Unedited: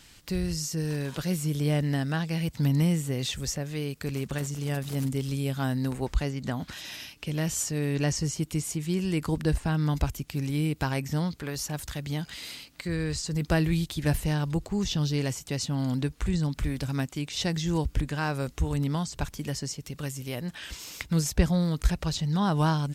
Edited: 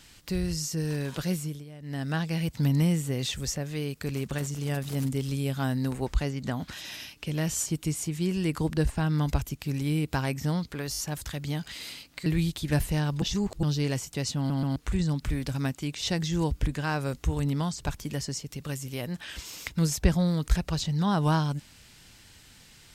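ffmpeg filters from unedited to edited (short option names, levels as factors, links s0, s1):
-filter_complex "[0:a]asplit=13[s0][s1][s2][s3][s4][s5][s6][s7][s8][s9][s10][s11][s12];[s0]atrim=end=1.65,asetpts=PTS-STARTPTS,afade=t=out:st=1.3:d=0.35:silence=0.1[s13];[s1]atrim=start=1.65:end=1.8,asetpts=PTS-STARTPTS,volume=0.1[s14];[s2]atrim=start=1.8:end=7.662,asetpts=PTS-STARTPTS,afade=t=in:d=0.35:silence=0.1[s15];[s3]atrim=start=8.338:end=11.622[s16];[s4]atrim=start=11.598:end=11.622[s17];[s5]atrim=start=11.598:end=11.622[s18];[s6]atrim=start=11.598:end=12.882[s19];[s7]atrim=start=13.598:end=14.562[s20];[s8]atrim=start=14.558:end=14.972,asetpts=PTS-STARTPTS,areverse[s21];[s9]atrim=start=14.968:end=15.842[s22];[s10]atrim=start=15.708:end=15.842[s23];[s11]atrim=start=15.708:end=15.842[s24];[s12]atrim=start=16.098[s25];[s13][s14][s15]concat=n=3:v=0:a=1[s26];[s26][s16]acrossfade=d=0.004:c1=hsin:c2=hsin[s27];[s27][s17]acrossfade=d=0.004:c1=hsin:c2=hsin[s28];[s28][s18]acrossfade=d=0.004:c1=hsin:c2=hsin[s29];[s29][s19]acrossfade=d=0.004:c1=hsin:c2=hsin[s30];[s30][s20]acrossfade=d=0.004:c1=hsin:c2=hsin[s31];[s31][s21]acrossfade=d=0.004:c1=hsin:c2=hsin[s32];[s32][s22]acrossfade=d=0.004:c1=hsin:c2=hsin[s33];[s33][s23]acrossfade=d=0.004:c1=hsin:c2=hsin[s34];[s34][s24]acrossfade=d=0.004:c1=hsin:c2=hsin[s35];[s35][s25]acrossfade=d=0.004:c1=hsin:c2=hsin"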